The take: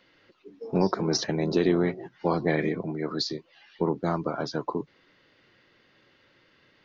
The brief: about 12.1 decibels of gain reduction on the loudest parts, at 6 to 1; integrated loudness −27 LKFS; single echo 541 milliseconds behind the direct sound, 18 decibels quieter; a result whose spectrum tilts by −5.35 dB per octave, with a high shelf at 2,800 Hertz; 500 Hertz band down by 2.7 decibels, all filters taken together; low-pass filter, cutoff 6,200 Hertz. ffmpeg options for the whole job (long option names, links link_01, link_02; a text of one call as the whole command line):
ffmpeg -i in.wav -af "lowpass=6200,equalizer=frequency=500:width_type=o:gain=-3.5,highshelf=frequency=2800:gain=-5,acompressor=threshold=-33dB:ratio=6,aecho=1:1:541:0.126,volume=11.5dB" out.wav